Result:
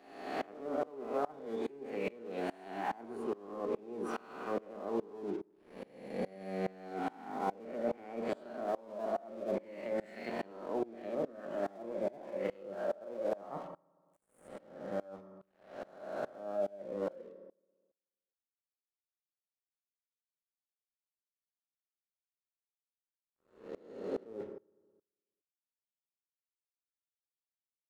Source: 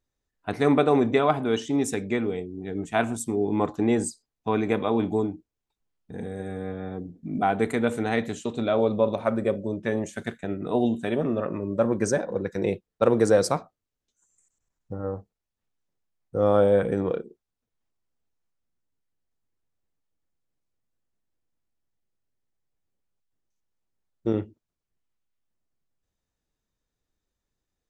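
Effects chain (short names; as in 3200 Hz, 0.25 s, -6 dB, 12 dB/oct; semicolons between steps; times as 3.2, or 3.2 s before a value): spectral swells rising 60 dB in 1.43 s; treble ducked by the level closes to 760 Hz, closed at -17.5 dBFS; HPF 200 Hz 24 dB/oct; reverse; compressor 6:1, threshold -36 dBFS, peak gain reduction 21 dB; reverse; crossover distortion -56 dBFS; resonator 270 Hz, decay 0.58 s, harmonics all, mix 40%; formant shift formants +3 st; on a send at -9 dB: reverb RT60 1.0 s, pre-delay 3 ms; on the sum: dB-ramp tremolo swelling 2.4 Hz, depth 25 dB; gain +11.5 dB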